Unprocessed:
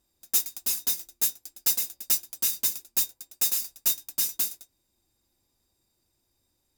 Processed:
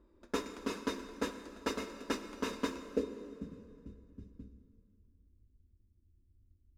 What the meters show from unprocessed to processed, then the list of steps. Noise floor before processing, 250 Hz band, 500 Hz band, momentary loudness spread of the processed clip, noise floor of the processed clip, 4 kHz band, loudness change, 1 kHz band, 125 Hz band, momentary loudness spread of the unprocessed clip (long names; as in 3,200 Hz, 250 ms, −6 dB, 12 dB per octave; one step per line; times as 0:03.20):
−75 dBFS, +14.0 dB, +14.0 dB, 17 LU, −69 dBFS, −13.5 dB, −14.0 dB, +7.0 dB, can't be measured, 4 LU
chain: phaser with its sweep stopped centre 320 Hz, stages 4
low-pass filter sweep 910 Hz → 110 Hz, 0:02.70–0:03.62
dense smooth reverb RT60 2.6 s, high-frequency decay 0.8×, DRR 8.5 dB
level +15 dB